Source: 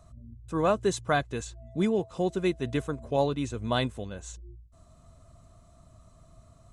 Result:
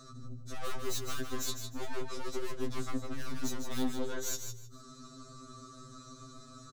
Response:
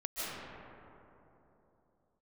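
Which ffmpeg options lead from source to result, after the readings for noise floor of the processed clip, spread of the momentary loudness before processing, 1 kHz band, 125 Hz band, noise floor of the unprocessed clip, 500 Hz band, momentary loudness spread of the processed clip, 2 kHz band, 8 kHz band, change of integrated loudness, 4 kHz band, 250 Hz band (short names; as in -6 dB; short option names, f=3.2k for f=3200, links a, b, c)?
-53 dBFS, 13 LU, -11.5 dB, -10.5 dB, -57 dBFS, -12.5 dB, 14 LU, -9.0 dB, +3.5 dB, -10.5 dB, -3.5 dB, -9.0 dB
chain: -filter_complex "[0:a]firequalizer=gain_entry='entry(140,0);entry(220,11);entry(430,11);entry(880,-25);entry(1200,15);entry(2600,-11);entry(3800,14);entry(6500,11);entry(9800,-7)':delay=0.05:min_phase=1,aeval=exprs='(tanh(44.7*val(0)+0.8)-tanh(0.8))/44.7':c=same,acrossover=split=250[a][b];[b]acompressor=threshold=-34dB:ratio=6[c];[a][c]amix=inputs=2:normalize=0,highshelf=f=9k:g=7,bandreject=f=65.51:t=h:w=4,bandreject=f=131.02:t=h:w=4,bandreject=f=196.53:t=h:w=4,areverse,acompressor=threshold=-40dB:ratio=12,areverse,aecho=1:1:154|308|462:0.447|0.103|0.0236,afftfilt=real='re*2.45*eq(mod(b,6),0)':imag='im*2.45*eq(mod(b,6),0)':win_size=2048:overlap=0.75,volume=9dB"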